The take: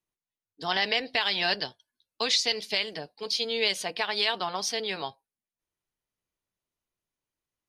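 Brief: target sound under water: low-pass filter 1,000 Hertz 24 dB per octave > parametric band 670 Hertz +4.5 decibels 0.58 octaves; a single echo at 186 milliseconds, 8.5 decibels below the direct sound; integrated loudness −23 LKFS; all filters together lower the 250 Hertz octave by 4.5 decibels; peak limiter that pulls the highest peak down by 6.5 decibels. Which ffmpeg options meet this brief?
ffmpeg -i in.wav -af "equalizer=frequency=250:width_type=o:gain=-6.5,alimiter=limit=-18dB:level=0:latency=1,lowpass=frequency=1000:width=0.5412,lowpass=frequency=1000:width=1.3066,equalizer=frequency=670:width_type=o:width=0.58:gain=4.5,aecho=1:1:186:0.376,volume=13dB" out.wav

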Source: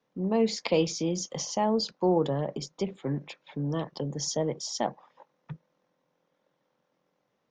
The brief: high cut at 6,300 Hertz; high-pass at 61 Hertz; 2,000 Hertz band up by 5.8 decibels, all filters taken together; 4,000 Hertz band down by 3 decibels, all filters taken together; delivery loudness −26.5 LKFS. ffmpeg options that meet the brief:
ffmpeg -i in.wav -af "highpass=61,lowpass=6300,equalizer=frequency=2000:width_type=o:gain=8.5,equalizer=frequency=4000:width_type=o:gain=-5,volume=3dB" out.wav

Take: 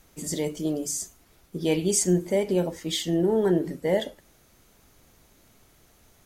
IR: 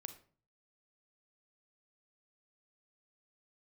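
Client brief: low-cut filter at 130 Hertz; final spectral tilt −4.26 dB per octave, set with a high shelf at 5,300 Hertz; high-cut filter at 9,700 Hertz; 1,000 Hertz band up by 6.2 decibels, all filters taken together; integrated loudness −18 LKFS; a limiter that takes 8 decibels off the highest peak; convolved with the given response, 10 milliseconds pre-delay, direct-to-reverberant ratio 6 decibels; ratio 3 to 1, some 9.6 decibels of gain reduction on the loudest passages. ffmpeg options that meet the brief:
-filter_complex "[0:a]highpass=130,lowpass=9700,equalizer=frequency=1000:width_type=o:gain=8.5,highshelf=frequency=5300:gain=-8,acompressor=threshold=-30dB:ratio=3,alimiter=level_in=3dB:limit=-24dB:level=0:latency=1,volume=-3dB,asplit=2[link_01][link_02];[1:a]atrim=start_sample=2205,adelay=10[link_03];[link_02][link_03]afir=irnorm=-1:irlink=0,volume=-1.5dB[link_04];[link_01][link_04]amix=inputs=2:normalize=0,volume=17.5dB"

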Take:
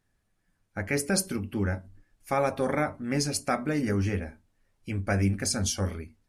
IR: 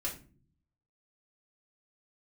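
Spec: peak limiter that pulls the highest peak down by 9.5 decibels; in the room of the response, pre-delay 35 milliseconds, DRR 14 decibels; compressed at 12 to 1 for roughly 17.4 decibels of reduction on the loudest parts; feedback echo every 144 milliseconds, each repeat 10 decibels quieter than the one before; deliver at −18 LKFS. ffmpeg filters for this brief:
-filter_complex "[0:a]acompressor=threshold=-39dB:ratio=12,alimiter=level_in=12.5dB:limit=-24dB:level=0:latency=1,volume=-12.5dB,aecho=1:1:144|288|432|576:0.316|0.101|0.0324|0.0104,asplit=2[link_01][link_02];[1:a]atrim=start_sample=2205,adelay=35[link_03];[link_02][link_03]afir=irnorm=-1:irlink=0,volume=-16dB[link_04];[link_01][link_04]amix=inputs=2:normalize=0,volume=28dB"

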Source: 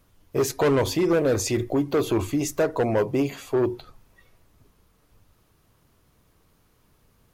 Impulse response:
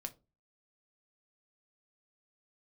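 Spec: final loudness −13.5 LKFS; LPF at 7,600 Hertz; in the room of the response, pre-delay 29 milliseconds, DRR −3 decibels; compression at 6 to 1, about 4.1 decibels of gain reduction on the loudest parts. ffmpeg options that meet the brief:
-filter_complex "[0:a]lowpass=7600,acompressor=threshold=-22dB:ratio=6,asplit=2[link_01][link_02];[1:a]atrim=start_sample=2205,adelay=29[link_03];[link_02][link_03]afir=irnorm=-1:irlink=0,volume=6dB[link_04];[link_01][link_04]amix=inputs=2:normalize=0,volume=9dB"

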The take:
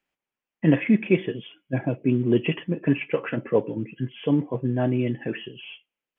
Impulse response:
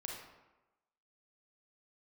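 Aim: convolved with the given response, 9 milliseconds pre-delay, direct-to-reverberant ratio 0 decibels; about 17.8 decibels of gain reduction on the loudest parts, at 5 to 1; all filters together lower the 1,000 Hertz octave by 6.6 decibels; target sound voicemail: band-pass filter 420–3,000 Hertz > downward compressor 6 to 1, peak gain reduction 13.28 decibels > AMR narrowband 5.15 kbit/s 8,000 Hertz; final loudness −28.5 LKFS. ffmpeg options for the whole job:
-filter_complex "[0:a]equalizer=frequency=1000:width_type=o:gain=-9,acompressor=threshold=-35dB:ratio=5,asplit=2[link_01][link_02];[1:a]atrim=start_sample=2205,adelay=9[link_03];[link_02][link_03]afir=irnorm=-1:irlink=0,volume=1dB[link_04];[link_01][link_04]amix=inputs=2:normalize=0,highpass=420,lowpass=3000,acompressor=threshold=-45dB:ratio=6,volume=23dB" -ar 8000 -c:a libopencore_amrnb -b:a 5150

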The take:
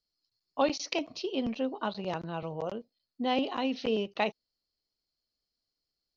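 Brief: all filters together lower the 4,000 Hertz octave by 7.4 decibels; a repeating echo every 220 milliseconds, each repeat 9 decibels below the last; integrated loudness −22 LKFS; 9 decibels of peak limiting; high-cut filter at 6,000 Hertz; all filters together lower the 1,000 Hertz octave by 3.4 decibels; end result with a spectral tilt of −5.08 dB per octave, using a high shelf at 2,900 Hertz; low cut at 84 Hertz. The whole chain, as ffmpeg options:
ffmpeg -i in.wav -af "highpass=84,lowpass=6000,equalizer=frequency=1000:width_type=o:gain=-4,highshelf=frequency=2900:gain=-3.5,equalizer=frequency=4000:width_type=o:gain=-7,alimiter=level_in=1.5dB:limit=-24dB:level=0:latency=1,volume=-1.5dB,aecho=1:1:220|440|660|880:0.355|0.124|0.0435|0.0152,volume=15dB" out.wav

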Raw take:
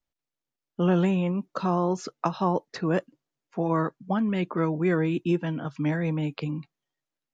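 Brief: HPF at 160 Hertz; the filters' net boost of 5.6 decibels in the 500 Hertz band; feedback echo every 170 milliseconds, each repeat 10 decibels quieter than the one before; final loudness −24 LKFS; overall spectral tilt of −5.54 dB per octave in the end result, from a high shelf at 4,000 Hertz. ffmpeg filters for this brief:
ffmpeg -i in.wav -af "highpass=160,equalizer=frequency=500:width_type=o:gain=7.5,highshelf=frequency=4000:gain=-6.5,aecho=1:1:170|340|510|680:0.316|0.101|0.0324|0.0104,volume=0.5dB" out.wav

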